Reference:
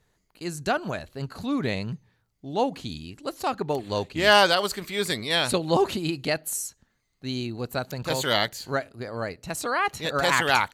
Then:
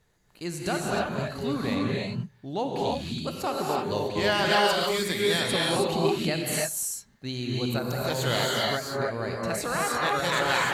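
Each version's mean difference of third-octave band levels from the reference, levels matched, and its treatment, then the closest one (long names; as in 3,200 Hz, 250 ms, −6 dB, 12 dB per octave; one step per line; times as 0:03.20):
8.5 dB: downward compressor 2 to 1, threshold −30 dBFS, peak gain reduction 9.5 dB
reverb whose tail is shaped and stops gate 340 ms rising, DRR −3 dB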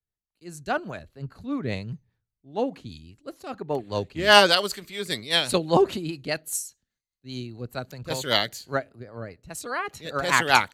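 5.5 dB: rotating-speaker cabinet horn 5 Hz
multiband upward and downward expander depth 70%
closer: second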